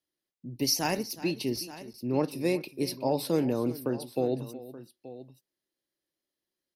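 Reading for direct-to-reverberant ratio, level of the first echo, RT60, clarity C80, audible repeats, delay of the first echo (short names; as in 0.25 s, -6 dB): none, -16.5 dB, none, none, 2, 0.368 s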